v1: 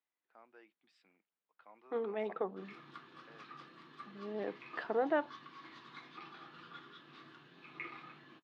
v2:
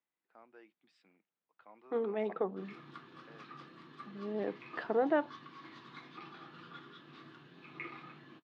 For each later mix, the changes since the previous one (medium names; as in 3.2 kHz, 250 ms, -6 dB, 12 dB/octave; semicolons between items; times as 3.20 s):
master: add bass shelf 410 Hz +6.5 dB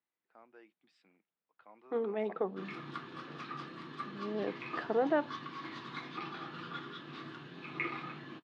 background +8.0 dB